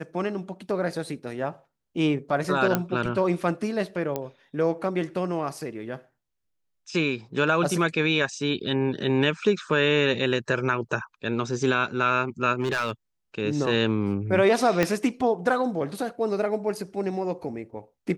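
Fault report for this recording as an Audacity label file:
2.750000	2.750000	click −8 dBFS
4.160000	4.160000	click −14 dBFS
12.600000	12.910000	clipping −21 dBFS
14.830000	14.830000	click −8 dBFS

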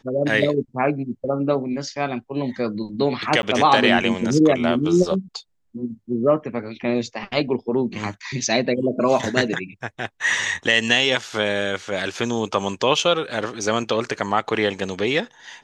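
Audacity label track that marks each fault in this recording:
3.420000	3.430000	drop-out

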